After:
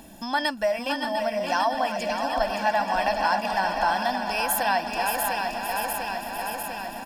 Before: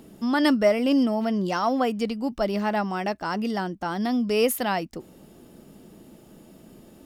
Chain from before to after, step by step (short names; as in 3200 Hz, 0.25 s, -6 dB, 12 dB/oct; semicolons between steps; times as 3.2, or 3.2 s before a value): regenerating reverse delay 0.349 s, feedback 81%, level -9.5 dB; compressor, threshold -25 dBFS, peak gain reduction 10.5 dB; bell 130 Hz -14.5 dB 1.6 oct; comb 1.2 ms, depth 81%; dynamic EQ 230 Hz, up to -8 dB, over -47 dBFS, Q 0.95; on a send: feedback echo 0.572 s, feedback 47%, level -7 dB; on the sum: gain +5.5 dB